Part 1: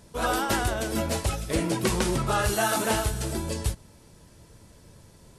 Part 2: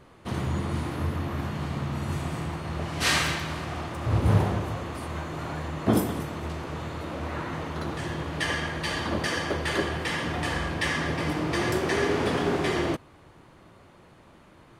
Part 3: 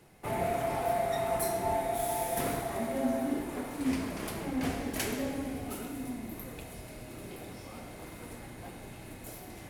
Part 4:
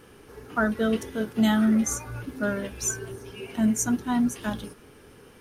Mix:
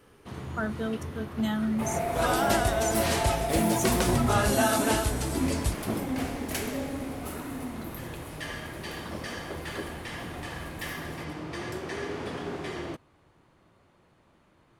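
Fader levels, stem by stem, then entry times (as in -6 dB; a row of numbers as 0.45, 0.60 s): -1.0, -9.5, +1.0, -7.5 dB; 2.00, 0.00, 1.55, 0.00 s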